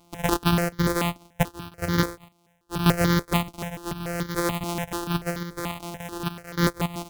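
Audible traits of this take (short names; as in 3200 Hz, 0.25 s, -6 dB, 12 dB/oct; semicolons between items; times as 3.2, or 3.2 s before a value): a buzz of ramps at a fixed pitch in blocks of 256 samples; random-step tremolo, depth 85%; notches that jump at a steady rate 6.9 Hz 460–2600 Hz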